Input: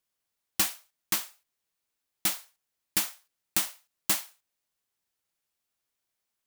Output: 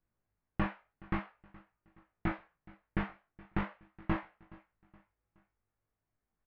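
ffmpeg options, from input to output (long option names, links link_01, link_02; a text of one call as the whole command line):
ffmpeg -i in.wav -filter_complex "[0:a]asplit=2[link_01][link_02];[link_02]aecho=0:1:421|842|1263:0.0794|0.0342|0.0147[link_03];[link_01][link_03]amix=inputs=2:normalize=0,flanger=delay=18:depth=2.7:speed=0.46,lowpass=frequency=2100:width=0.5412,lowpass=frequency=2100:width=1.3066,aemphasis=mode=reproduction:type=riaa,asplit=2[link_04][link_05];[link_05]aecho=0:1:18|40:0.376|0.355[link_06];[link_04][link_06]amix=inputs=2:normalize=0,volume=2.5dB" out.wav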